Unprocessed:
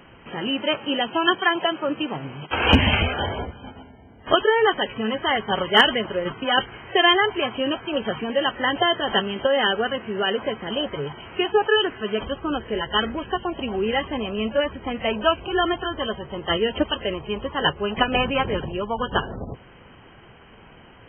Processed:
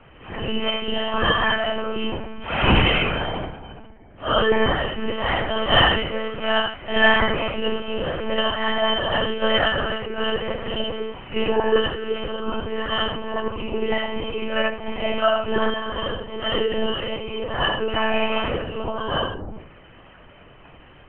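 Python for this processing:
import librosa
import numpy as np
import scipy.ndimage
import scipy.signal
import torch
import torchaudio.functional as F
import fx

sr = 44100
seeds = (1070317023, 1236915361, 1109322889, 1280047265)

y = fx.phase_scramble(x, sr, seeds[0], window_ms=200)
y = y + 10.0 ** (-7.5 / 20.0) * np.pad(y, (int(82 * sr / 1000.0), 0))[:len(y)]
y = fx.lpc_monotone(y, sr, seeds[1], pitch_hz=220.0, order=10)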